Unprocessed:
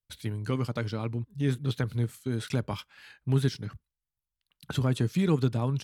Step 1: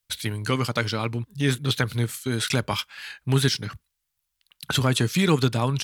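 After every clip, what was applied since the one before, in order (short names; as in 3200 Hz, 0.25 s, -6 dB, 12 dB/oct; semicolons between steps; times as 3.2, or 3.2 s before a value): tilt shelf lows -6 dB, about 870 Hz; gain +9 dB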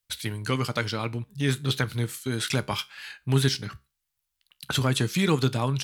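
resonator 67 Hz, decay 0.27 s, harmonics all, mix 40%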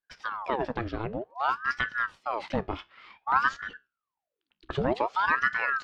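tape spacing loss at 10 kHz 40 dB; ring modulator with a swept carrier 900 Hz, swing 80%, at 0.54 Hz; gain +1.5 dB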